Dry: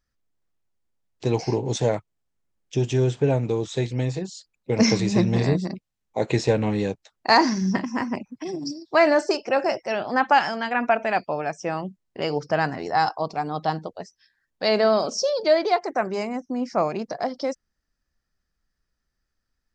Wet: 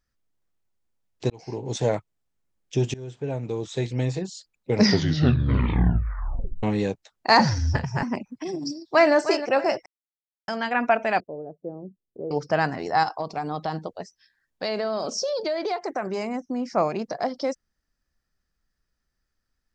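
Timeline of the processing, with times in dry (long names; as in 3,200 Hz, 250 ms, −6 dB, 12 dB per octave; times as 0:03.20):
0:01.30–0:01.95: fade in
0:02.94–0:04.05: fade in, from −22.5 dB
0:04.71: tape stop 1.92 s
0:07.39–0:08.03: frequency shifter −110 Hz
0:08.63–0:09.14: delay throw 310 ms, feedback 30%, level −11 dB
0:09.86–0:10.48: silence
0:11.20–0:12.31: transistor ladder low-pass 530 Hz, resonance 45%
0:13.03–0:16.74: downward compressor, threshold −23 dBFS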